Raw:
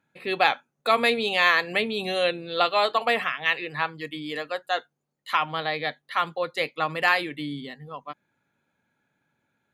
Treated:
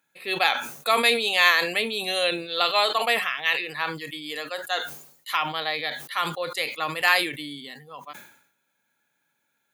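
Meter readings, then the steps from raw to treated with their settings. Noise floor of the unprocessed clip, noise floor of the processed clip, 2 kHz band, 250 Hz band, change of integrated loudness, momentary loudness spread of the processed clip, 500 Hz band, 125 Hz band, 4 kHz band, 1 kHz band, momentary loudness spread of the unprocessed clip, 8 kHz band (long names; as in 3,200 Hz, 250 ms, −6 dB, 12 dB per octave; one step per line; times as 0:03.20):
−79 dBFS, −75 dBFS, +1.5 dB, −2.5 dB, +1.5 dB, 17 LU, −1.5 dB, −3.0 dB, +4.5 dB, −1.0 dB, 13 LU, can't be measured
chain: harmonic and percussive parts rebalanced percussive −4 dB
RIAA equalisation recording
level that may fall only so fast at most 84 dB per second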